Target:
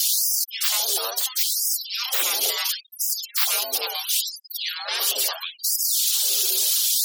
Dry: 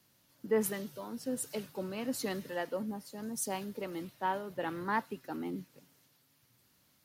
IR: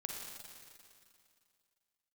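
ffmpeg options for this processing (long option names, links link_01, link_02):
-filter_complex "[0:a]aeval=exprs='val(0)+0.5*0.00708*sgn(val(0))':channel_layout=same,afftfilt=real='re*gte(hypot(re,im),0.00282)':imag='im*gte(hypot(re,im),0.00282)':win_size=1024:overlap=0.75,acrossover=split=350[link_01][link_02];[link_02]aexciter=amount=9.4:drive=8.2:freq=2700[link_03];[link_01][link_03]amix=inputs=2:normalize=0,acontrast=79,afftfilt=real='re*lt(hypot(re,im),0.141)':imag='im*lt(hypot(re,im),0.141)':win_size=1024:overlap=0.75,afreqshift=260,areverse,acompressor=mode=upward:threshold=-34dB:ratio=2.5,areverse,afftfilt=real='re*gte(b*sr/1024,230*pow(4900/230,0.5+0.5*sin(2*PI*0.73*pts/sr)))':imag='im*gte(b*sr/1024,230*pow(4900/230,0.5+0.5*sin(2*PI*0.73*pts/sr)))':win_size=1024:overlap=0.75,volume=4.5dB"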